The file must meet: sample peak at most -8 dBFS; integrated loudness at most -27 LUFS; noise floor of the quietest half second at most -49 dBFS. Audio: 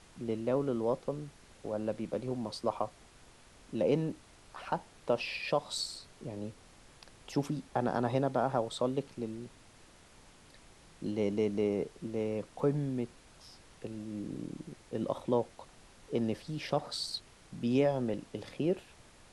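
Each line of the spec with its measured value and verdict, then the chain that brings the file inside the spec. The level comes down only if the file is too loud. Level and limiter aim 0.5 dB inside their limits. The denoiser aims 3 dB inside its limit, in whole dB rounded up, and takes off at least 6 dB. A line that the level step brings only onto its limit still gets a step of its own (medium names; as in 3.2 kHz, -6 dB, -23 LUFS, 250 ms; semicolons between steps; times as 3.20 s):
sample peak -16.5 dBFS: pass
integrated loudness -35.0 LUFS: pass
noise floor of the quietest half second -58 dBFS: pass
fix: none needed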